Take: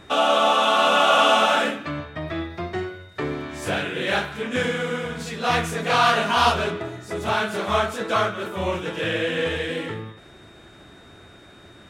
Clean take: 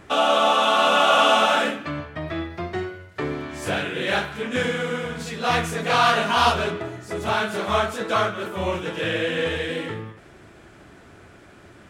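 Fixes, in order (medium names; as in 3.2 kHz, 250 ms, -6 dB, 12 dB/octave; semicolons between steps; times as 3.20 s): band-stop 3.7 kHz, Q 30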